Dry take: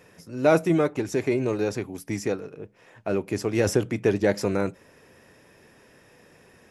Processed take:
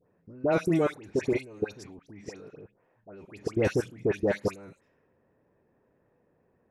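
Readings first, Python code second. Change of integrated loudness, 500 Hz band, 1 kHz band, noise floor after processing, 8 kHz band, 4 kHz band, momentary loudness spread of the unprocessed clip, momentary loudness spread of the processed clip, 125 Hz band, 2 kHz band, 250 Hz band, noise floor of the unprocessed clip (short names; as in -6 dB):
-4.0 dB, -5.5 dB, -6.0 dB, -70 dBFS, -11.5 dB, -8.0 dB, 14 LU, 21 LU, -6.0 dB, -5.5 dB, -5.5 dB, -56 dBFS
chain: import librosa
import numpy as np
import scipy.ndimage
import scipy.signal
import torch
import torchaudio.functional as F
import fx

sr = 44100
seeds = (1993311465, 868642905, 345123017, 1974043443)

y = fx.env_lowpass(x, sr, base_hz=910.0, full_db=-21.0)
y = fx.level_steps(y, sr, step_db=23)
y = fx.dispersion(y, sr, late='highs', ms=88.0, hz=1700.0)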